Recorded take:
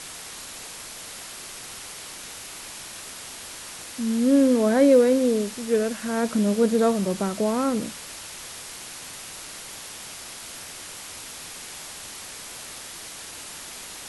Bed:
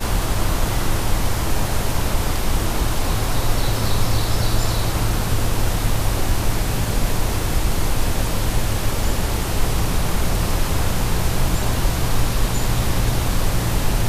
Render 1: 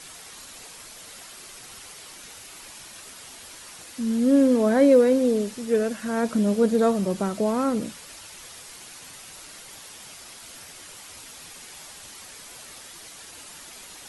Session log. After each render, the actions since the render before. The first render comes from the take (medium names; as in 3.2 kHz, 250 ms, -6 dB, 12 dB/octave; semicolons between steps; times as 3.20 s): noise reduction 7 dB, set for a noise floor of -40 dBFS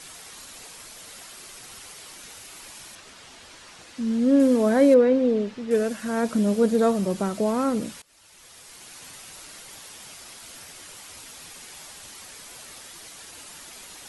2.95–4.40 s: distance through air 69 m; 4.94–5.71 s: low-pass 3.3 kHz; 8.02–9.04 s: fade in, from -23 dB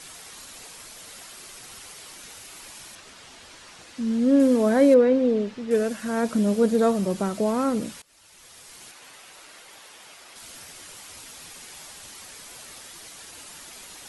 8.91–10.36 s: tone controls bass -12 dB, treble -7 dB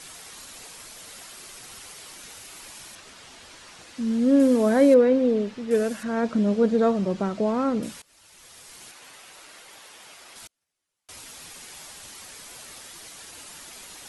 6.03–7.83 s: distance through air 120 m; 10.47–11.09 s: gate -39 dBFS, range -40 dB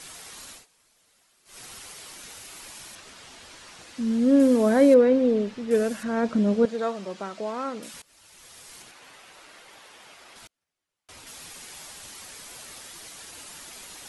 0.51–1.60 s: dip -21 dB, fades 0.15 s; 6.65–7.94 s: high-pass 960 Hz 6 dB/octave; 8.82–11.27 s: treble shelf 5.2 kHz -8.5 dB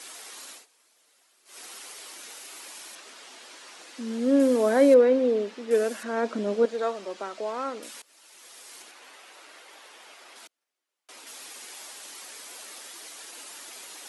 high-pass 280 Hz 24 dB/octave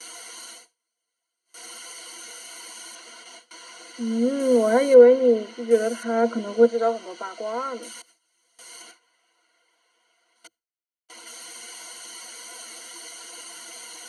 gate with hold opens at -36 dBFS; rippled EQ curve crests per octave 1.9, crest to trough 16 dB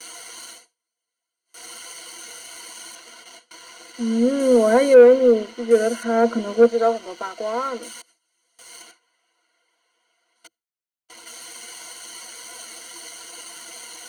waveshaping leveller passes 1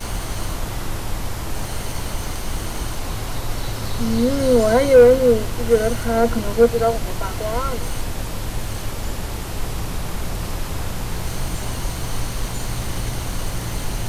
add bed -6 dB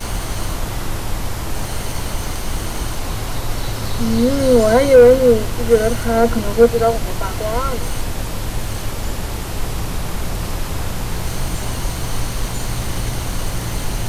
trim +3 dB; peak limiter -1 dBFS, peak gain reduction 1.5 dB